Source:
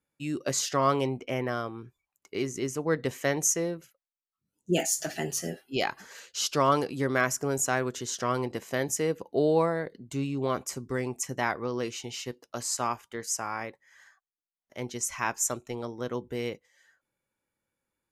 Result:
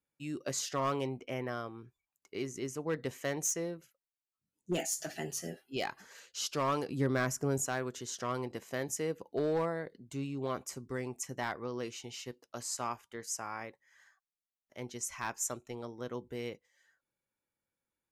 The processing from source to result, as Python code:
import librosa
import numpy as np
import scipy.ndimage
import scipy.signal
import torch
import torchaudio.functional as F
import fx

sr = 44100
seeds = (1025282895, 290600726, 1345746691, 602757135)

y = np.clip(x, -10.0 ** (-18.5 / 20.0), 10.0 ** (-18.5 / 20.0))
y = fx.low_shelf(y, sr, hz=320.0, db=9.0, at=(6.88, 7.66))
y = y * librosa.db_to_amplitude(-7.0)